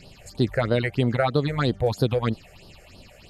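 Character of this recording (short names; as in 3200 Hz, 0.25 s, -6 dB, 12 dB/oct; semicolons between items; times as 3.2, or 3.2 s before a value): phasing stages 6, 3.1 Hz, lowest notch 250–2200 Hz; MP2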